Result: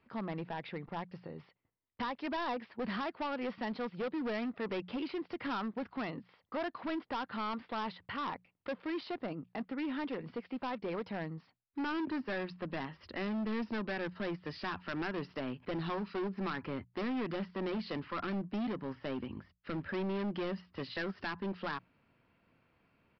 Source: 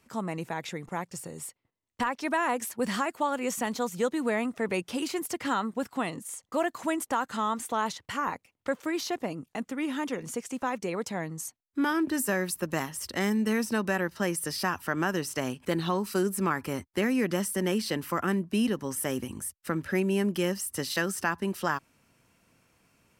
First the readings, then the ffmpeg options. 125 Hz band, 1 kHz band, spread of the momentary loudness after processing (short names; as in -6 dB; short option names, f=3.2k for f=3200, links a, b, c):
-8.0 dB, -8.5 dB, 6 LU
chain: -af "lowpass=2.8k,bandreject=f=60:t=h:w=6,bandreject=f=120:t=h:w=6,bandreject=f=180:t=h:w=6,aresample=11025,asoftclip=type=hard:threshold=-29dB,aresample=44100,volume=-4dB"